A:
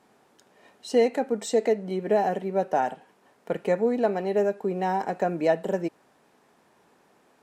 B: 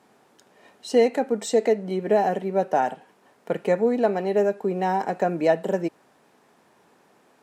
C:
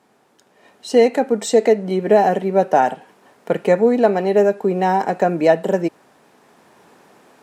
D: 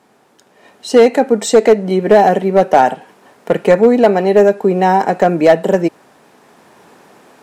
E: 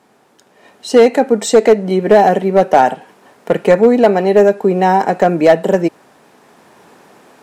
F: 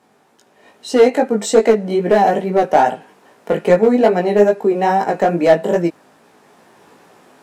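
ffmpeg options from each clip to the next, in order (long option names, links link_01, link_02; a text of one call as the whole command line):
ffmpeg -i in.wav -af "highpass=70,volume=2.5dB" out.wav
ffmpeg -i in.wav -af "dynaudnorm=framelen=530:gausssize=3:maxgain=9.5dB" out.wav
ffmpeg -i in.wav -af "asoftclip=type=hard:threshold=-7dB,volume=5.5dB" out.wav
ffmpeg -i in.wav -af anull out.wav
ffmpeg -i in.wav -af "flanger=delay=17:depth=3:speed=2.4" out.wav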